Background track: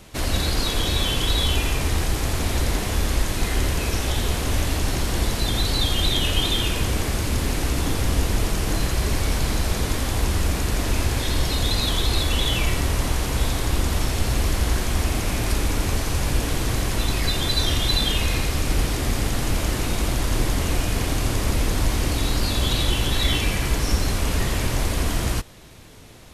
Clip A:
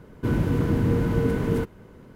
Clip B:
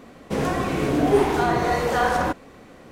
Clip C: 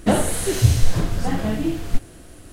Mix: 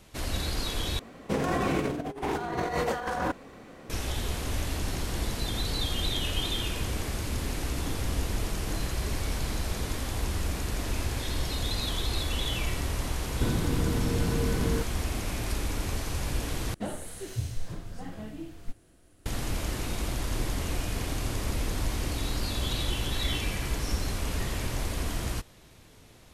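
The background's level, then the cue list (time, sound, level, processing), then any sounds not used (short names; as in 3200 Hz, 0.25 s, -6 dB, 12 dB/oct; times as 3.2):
background track -8.5 dB
0.99 replace with B -5 dB + negative-ratio compressor -24 dBFS, ratio -0.5
4.5 add A -16 dB + compressor, threshold -26 dBFS
13.18 add A -1 dB + compressor, threshold -24 dBFS
16.74 replace with C -17 dB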